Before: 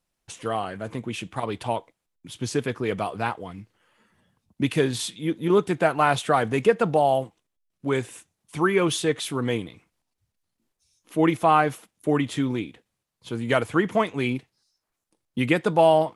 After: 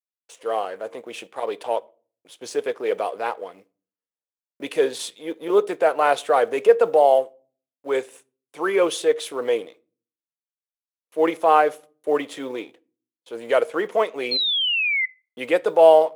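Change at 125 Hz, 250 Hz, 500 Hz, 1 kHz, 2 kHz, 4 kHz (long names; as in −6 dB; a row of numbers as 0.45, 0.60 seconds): below −20 dB, −6.5 dB, +5.0 dB, +2.0 dB, +2.0 dB, +7.5 dB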